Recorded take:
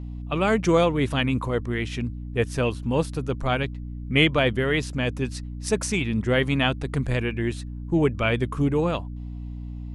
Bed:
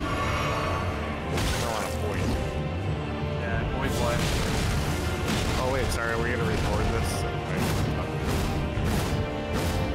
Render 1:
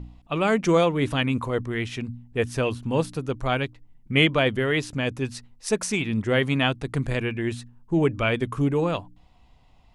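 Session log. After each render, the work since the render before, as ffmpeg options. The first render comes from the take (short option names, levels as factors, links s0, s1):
-af "bandreject=f=60:t=h:w=4,bandreject=f=120:t=h:w=4,bandreject=f=180:t=h:w=4,bandreject=f=240:t=h:w=4,bandreject=f=300:t=h:w=4"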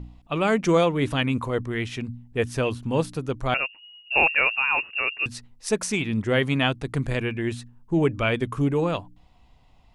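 -filter_complex "[0:a]asettb=1/sr,asplit=3[s0][s1][s2];[s0]atrim=end=3.544[s3];[s1]atrim=start=3.54:end=5.26,asetpts=PTS-STARTPTS,afade=t=in:d=0.004:c=qsin,afade=t=out:st=1.716:d=0.004:c=qsin,lowpass=f=2500:t=q:w=0.5098,lowpass=f=2500:t=q:w=0.6013,lowpass=f=2500:t=q:w=0.9,lowpass=f=2500:t=q:w=2.563,afreqshift=-2900[s4];[s2]atrim=start=5.256[s5];[s3][s4]acrossfade=d=0.004:c1=hsin:c2=qsin[s6];[s6][s5]acrossfade=d=0.004:c1=qsin:c2=hsin"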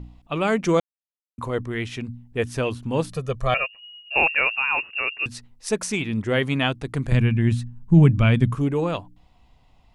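-filter_complex "[0:a]asettb=1/sr,asplit=3[s0][s1][s2];[s0]atrim=end=3.094[s3];[s1]atrim=start=3.09:end=4.16,asetpts=PTS-STARTPTS,afade=t=in:d=0.004:c=qsin,afade=t=out:st=1.066:d=0.004:c=qsin,aecho=1:1:1.7:0.81,atrim=end_sample=47187[s4];[s2]atrim=start=4.156[s5];[s3][s4]acrossfade=d=0.004:c1=hsin:c2=qsin[s6];[s6][s5]acrossfade=d=0.004:c1=qsin:c2=hsin,asettb=1/sr,asplit=3[s7][s8][s9];[s7]atrim=end=7.124[s10];[s8]atrim=start=7.12:end=8.55,asetpts=PTS-STARTPTS,afade=t=in:d=0.004:c=qsin,afade=t=out:st=1.426:d=0.004:c=qsin,lowshelf=f=260:t=q:w=1.5:g=11[s11];[s9]atrim=start=8.546[s12];[s10][s11]acrossfade=d=0.004:c1=hsin:c2=qsin[s13];[s13][s12]acrossfade=d=0.004:c1=qsin:c2=hsin,asplit=3[s14][s15][s16];[s14]atrim=end=0.8,asetpts=PTS-STARTPTS,afade=t=out:st=0.796:d=0.004:c=hsin[s17];[s15]atrim=start=0.8:end=1.38,asetpts=PTS-STARTPTS,volume=0[s18];[s16]atrim=start=1.38,asetpts=PTS-STARTPTS,afade=t=in:d=0.004:c=hsin[s19];[s17][s18][s19]concat=n=3:v=0:a=1"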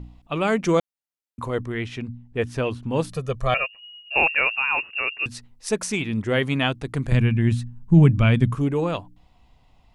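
-filter_complex "[0:a]asettb=1/sr,asplit=3[s0][s1][s2];[s0]atrim=end=1.724[s3];[s1]atrim=start=1.72:end=2.96,asetpts=PTS-STARTPTS,afade=t=in:d=0.004:c=qsin,afade=t=out:st=1.236:d=0.004:c=qsin,lowpass=f=4000:p=1[s4];[s2]atrim=start=2.956[s5];[s3][s4]acrossfade=d=0.004:c1=hsin:c2=qsin[s6];[s6][s5]acrossfade=d=0.004:c1=qsin:c2=hsin"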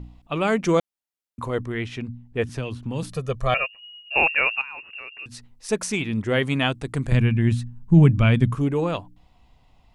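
-filter_complex "[0:a]asettb=1/sr,asplit=3[s0][s1][s2];[s0]atrim=end=2.494[s3];[s1]atrim=start=2.49:end=3.03,asetpts=PTS-STARTPTS,afade=t=in:d=0.004:c=qsin,afade=t=out:st=0.536:d=0.004:c=qsin,acrossover=split=200|3000[s4][s5][s6];[s5]acompressor=threshold=0.0282:ratio=4:attack=3.2:release=140:knee=2.83:detection=peak[s7];[s4][s7][s6]amix=inputs=3:normalize=0[s8];[s2]atrim=start=3.026[s9];[s3][s8]acrossfade=d=0.004:c1=hsin:c2=qsin[s10];[s10][s9]acrossfade=d=0.004:c1=qsin:c2=hsin,asettb=1/sr,asplit=3[s11][s12][s13];[s11]atrim=end=4.614[s14];[s12]atrim=start=4.61:end=5.69,asetpts=PTS-STARTPTS,afade=t=in:d=0.004:c=qsin,afade=t=out:st=1.076:d=0.004:c=qsin,acompressor=threshold=0.0178:ratio=5:attack=3.2:release=140:knee=1:detection=peak[s15];[s13]atrim=start=5.686[s16];[s14][s15]acrossfade=d=0.004:c1=hsin:c2=qsin[s17];[s17][s16]acrossfade=d=0.004:c1=qsin:c2=hsin,asettb=1/sr,asplit=3[s18][s19][s20];[s18]atrim=end=6.444[s21];[s19]atrim=start=6.44:end=7.08,asetpts=PTS-STARTPTS,afade=t=in:d=0.004:c=qsin,afade=t=out:st=0.636:d=0.004:c=qsin,equalizer=f=8200:w=3.1:g=6.5[s22];[s20]atrim=start=7.076[s23];[s21][s22]acrossfade=d=0.004:c1=hsin:c2=qsin[s24];[s24][s23]acrossfade=d=0.004:c1=qsin:c2=hsin"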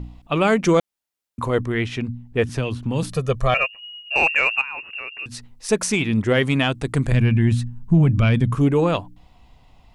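-af "acontrast=39,alimiter=limit=0.376:level=0:latency=1:release=132"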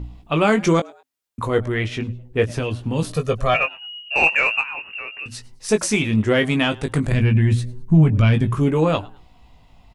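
-filter_complex "[0:a]asplit=2[s0][s1];[s1]adelay=19,volume=0.473[s2];[s0][s2]amix=inputs=2:normalize=0,asplit=3[s3][s4][s5];[s4]adelay=105,afreqshift=130,volume=0.0631[s6];[s5]adelay=210,afreqshift=260,volume=0.0195[s7];[s3][s6][s7]amix=inputs=3:normalize=0"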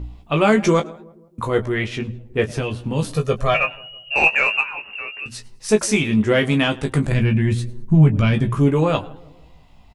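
-filter_complex "[0:a]asplit=2[s0][s1];[s1]adelay=14,volume=0.398[s2];[s0][s2]amix=inputs=2:normalize=0,asplit=2[s3][s4];[s4]adelay=161,lowpass=f=950:p=1,volume=0.0891,asplit=2[s5][s6];[s6]adelay=161,lowpass=f=950:p=1,volume=0.52,asplit=2[s7][s8];[s8]adelay=161,lowpass=f=950:p=1,volume=0.52,asplit=2[s9][s10];[s10]adelay=161,lowpass=f=950:p=1,volume=0.52[s11];[s3][s5][s7][s9][s11]amix=inputs=5:normalize=0"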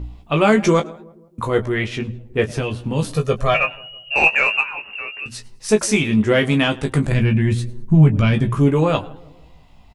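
-af "volume=1.12,alimiter=limit=0.708:level=0:latency=1"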